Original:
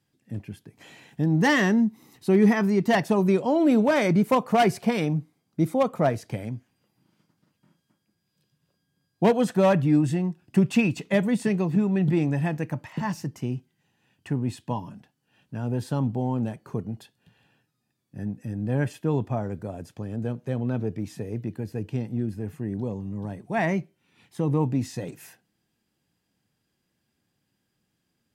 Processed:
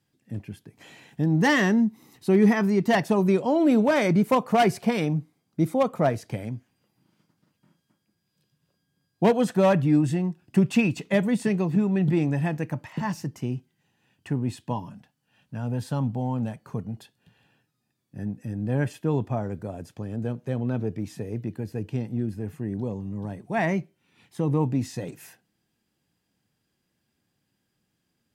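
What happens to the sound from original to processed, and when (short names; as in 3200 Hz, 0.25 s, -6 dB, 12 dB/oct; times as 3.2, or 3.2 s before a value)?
14.87–16.94 bell 360 Hz -8 dB 0.5 oct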